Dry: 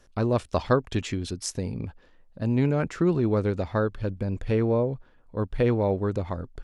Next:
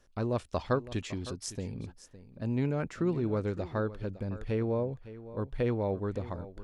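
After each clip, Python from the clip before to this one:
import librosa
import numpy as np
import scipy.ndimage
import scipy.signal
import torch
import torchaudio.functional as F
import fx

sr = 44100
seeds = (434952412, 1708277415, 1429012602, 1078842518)

y = x + 10.0 ** (-15.5 / 20.0) * np.pad(x, (int(559 * sr / 1000.0), 0))[:len(x)]
y = y * 10.0 ** (-7.0 / 20.0)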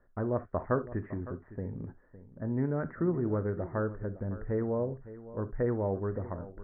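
y = scipy.signal.sosfilt(scipy.signal.cheby1(6, 1.0, 1900.0, 'lowpass', fs=sr, output='sos'), x)
y = fx.rev_gated(y, sr, seeds[0], gate_ms=90, shape='flat', drr_db=11.0)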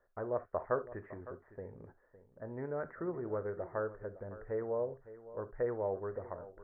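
y = fx.low_shelf_res(x, sr, hz=350.0, db=-9.0, q=1.5)
y = y * 10.0 ** (-4.0 / 20.0)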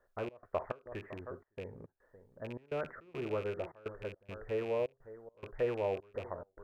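y = fx.rattle_buzz(x, sr, strikes_db=-48.0, level_db=-39.0)
y = fx.step_gate(y, sr, bpm=105, pattern='xx.xx.xx', floor_db=-24.0, edge_ms=4.5)
y = y * 10.0 ** (1.5 / 20.0)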